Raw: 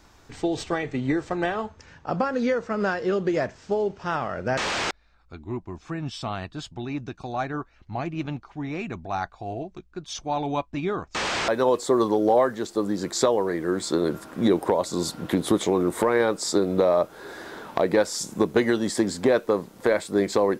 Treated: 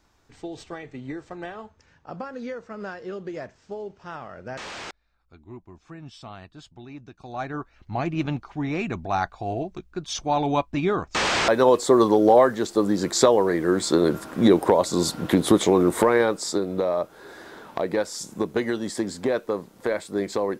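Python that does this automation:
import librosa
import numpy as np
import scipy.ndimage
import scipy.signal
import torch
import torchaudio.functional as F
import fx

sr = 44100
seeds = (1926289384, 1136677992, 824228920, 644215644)

y = fx.gain(x, sr, db=fx.line((7.13, -10.0), (7.42, -2.5), (8.11, 4.0), (15.99, 4.0), (16.67, -4.0)))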